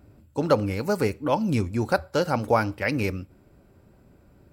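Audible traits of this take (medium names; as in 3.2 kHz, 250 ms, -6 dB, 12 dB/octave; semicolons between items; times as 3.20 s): noise floor -57 dBFS; spectral tilt -5.5 dB/octave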